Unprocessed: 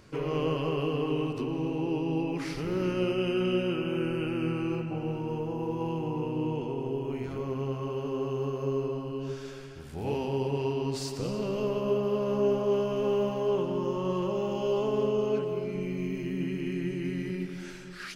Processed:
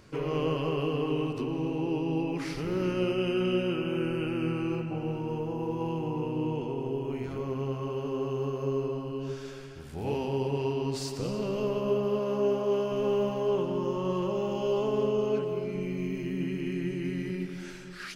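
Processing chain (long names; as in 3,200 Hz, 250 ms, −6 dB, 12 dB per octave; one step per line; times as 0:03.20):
0:12.19–0:12.92: low-shelf EQ 110 Hz −11 dB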